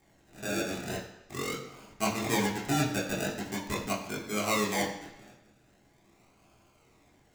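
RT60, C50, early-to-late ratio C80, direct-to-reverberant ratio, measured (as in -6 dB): 1.1 s, 7.0 dB, 9.0 dB, -4.0 dB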